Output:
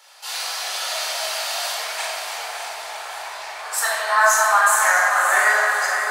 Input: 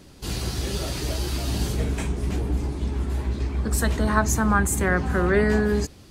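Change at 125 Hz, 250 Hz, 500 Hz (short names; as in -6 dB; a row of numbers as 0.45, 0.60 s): under -40 dB, under -30 dB, -1.5 dB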